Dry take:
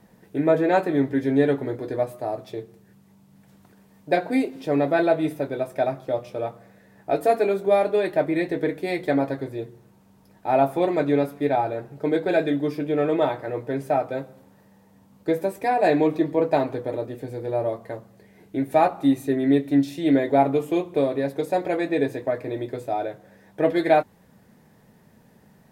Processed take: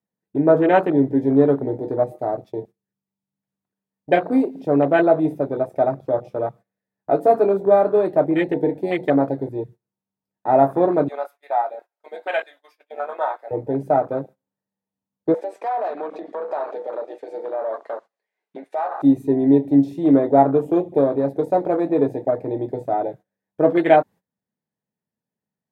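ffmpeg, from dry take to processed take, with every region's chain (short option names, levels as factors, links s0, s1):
-filter_complex "[0:a]asettb=1/sr,asplit=3[s0][s1][s2];[s0]atrim=end=11.084[s3];[s1]atrim=start=11.08:end=13.51,asetpts=PTS-STARTPTS,afade=t=in:d=0.004:c=qsin,afade=t=out:st=2.426:d=0.004:c=qsin,highpass=f=700:w=0.5412,highpass=f=700:w=1.3066,aecho=1:1:5.6:0.36,atrim=end_sample=107163[s4];[s2]atrim=start=13.506[s5];[s3][s4]acrossfade=d=0.004:c1=hsin:c2=qsin[s6];[s6][s5]acrossfade=d=0.004:c1=qsin:c2=hsin,asettb=1/sr,asplit=3[s7][s8][s9];[s7]atrim=end=15.344[s10];[s8]atrim=start=15.34:end=19.02,asetpts=PTS-STARTPTS,afade=t=in:d=0.004:c=qsin,afade=t=out:st=3.676:d=0.004:c=qsin,acompressor=threshold=0.0501:ratio=16:attack=3.2:release=140:knee=1:detection=peak,asplit=2[s11][s12];[s12]highpass=f=720:p=1,volume=6.31,asoftclip=type=tanh:threshold=0.141[s13];[s11][s13]amix=inputs=2:normalize=0,lowpass=f=5400:p=1,volume=0.501,highpass=590,lowpass=7400[s14];[s9]atrim=start=19.016[s15];[s10][s14]acrossfade=d=0.004:c1=hsin:c2=qsin[s16];[s16][s15]acrossfade=d=0.004:c1=qsin:c2=hsin,agate=range=0.0891:threshold=0.00891:ratio=16:detection=peak,afwtdn=0.0316,highpass=92,volume=1.68"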